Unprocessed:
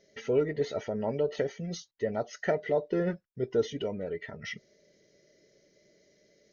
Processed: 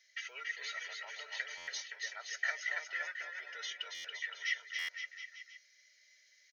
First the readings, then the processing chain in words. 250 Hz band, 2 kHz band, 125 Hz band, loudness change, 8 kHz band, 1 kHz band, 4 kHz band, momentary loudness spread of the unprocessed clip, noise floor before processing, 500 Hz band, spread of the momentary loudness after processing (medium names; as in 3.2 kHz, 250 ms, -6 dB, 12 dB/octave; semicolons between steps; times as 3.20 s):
under -40 dB, +6.0 dB, under -40 dB, -7.5 dB, no reading, -9.0 dB, +5.0 dB, 10 LU, -68 dBFS, -29.0 dB, 8 LU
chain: ladder high-pass 1.5 kHz, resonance 35%; on a send: bouncing-ball echo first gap 280 ms, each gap 0.85×, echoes 5; on the sum: buffer glitch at 1.57/3.94/4.78 s, samples 512, times 8; trim +8 dB